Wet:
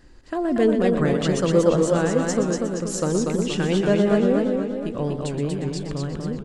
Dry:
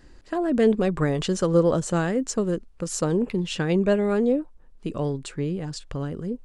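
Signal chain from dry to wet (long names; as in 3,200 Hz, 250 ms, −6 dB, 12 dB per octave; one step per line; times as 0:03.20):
slap from a distant wall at 21 metres, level −9 dB
feedback echo with a swinging delay time 237 ms, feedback 51%, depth 114 cents, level −3.5 dB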